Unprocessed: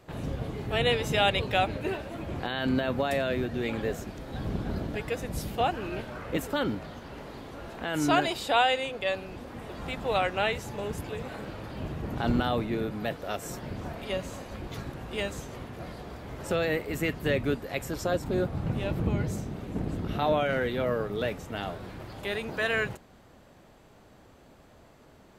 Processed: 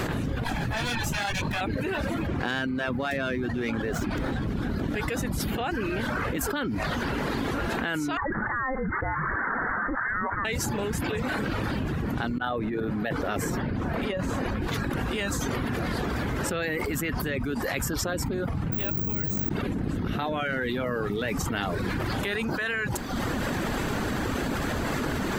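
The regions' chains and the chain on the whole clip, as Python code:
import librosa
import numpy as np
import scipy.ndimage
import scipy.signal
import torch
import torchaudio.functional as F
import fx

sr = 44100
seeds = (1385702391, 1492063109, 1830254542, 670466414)

y = fx.chain(x, sr, fx.lower_of_two(delay_ms=1.2),
    fx.hum_notches(base_hz=50, count=9),
    fx.detune_double(cents=32), at=(0.44, 1.61))
y = fx.chain(y, sr, fx.high_shelf(hz=5100.0, db=-6.0),
    fx.running_max(window=3), at=(2.27, 4.48))
y = fx.chain(y, sr, fx.highpass(hz=1100.0, slope=24),
    fx.freq_invert(carrier_hz=2600), at=(8.17, 10.45))
y = fx.chain(y, sr, fx.high_shelf(hz=2600.0, db=-10.0),
    fx.over_compress(threshold_db=-34.0, ratio=-0.5), at=(12.38, 14.62))
y = fx.chain(y, sr, fx.resample_bad(factor=2, down='filtered', up='zero_stuff'),
    fx.env_flatten(amount_pct=100), at=(18.72, 19.49))
y = fx.dereverb_blind(y, sr, rt60_s=0.53)
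y = fx.graphic_eq_15(y, sr, hz=(250, 630, 1600), db=(4, -5, 5))
y = fx.env_flatten(y, sr, amount_pct=100)
y = F.gain(torch.from_numpy(y), -8.5).numpy()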